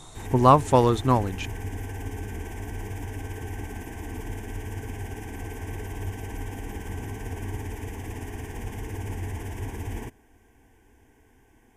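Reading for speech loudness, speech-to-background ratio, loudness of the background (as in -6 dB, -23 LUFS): -20.5 LUFS, 15.5 dB, -36.0 LUFS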